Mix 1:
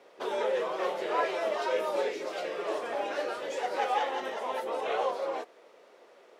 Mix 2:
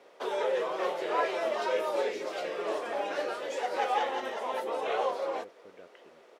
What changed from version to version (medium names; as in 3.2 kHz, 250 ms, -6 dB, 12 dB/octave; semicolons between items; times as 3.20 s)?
speech: entry +1.15 s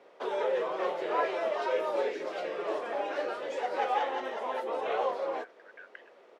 speech: add resonant high-pass 1.6 kHz, resonance Q 10; master: add low-pass 2.9 kHz 6 dB/octave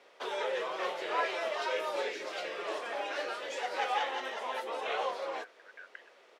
background: add tilt shelf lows -7.5 dB, about 1.3 kHz